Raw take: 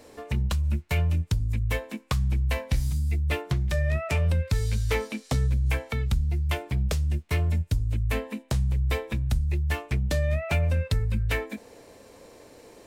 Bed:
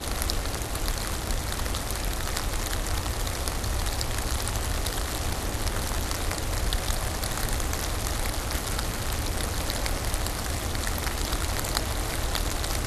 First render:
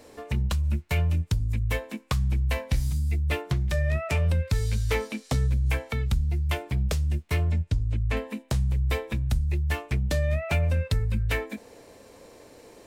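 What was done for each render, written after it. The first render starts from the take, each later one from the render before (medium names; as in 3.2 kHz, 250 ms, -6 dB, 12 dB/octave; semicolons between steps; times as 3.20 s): 7.44–8.17 s: distance through air 67 m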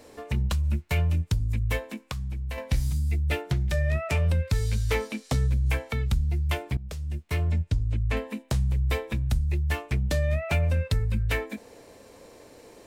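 1.82–2.58 s: compression, threshold -29 dBFS; 3.27–3.93 s: Butterworth band-stop 1.1 kHz, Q 6.9; 6.77–7.53 s: fade in, from -16.5 dB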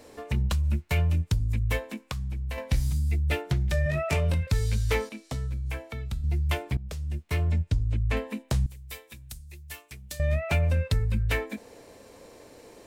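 3.84–4.47 s: doubling 20 ms -3 dB; 5.09–6.24 s: feedback comb 330 Hz, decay 0.42 s; 8.66–10.20 s: pre-emphasis filter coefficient 0.9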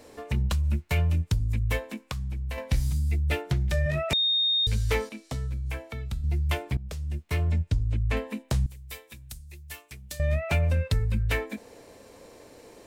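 4.13–4.67 s: bleep 3.69 kHz -21 dBFS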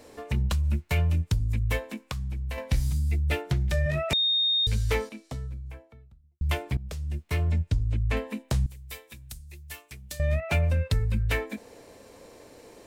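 4.79–6.41 s: studio fade out; 10.40–10.90 s: three bands expanded up and down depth 40%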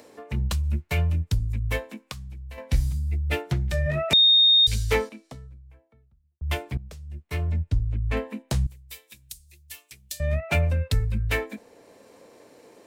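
upward compressor, threshold -32 dBFS; three bands expanded up and down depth 100%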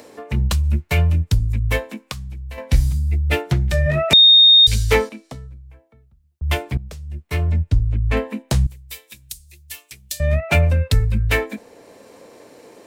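trim +7 dB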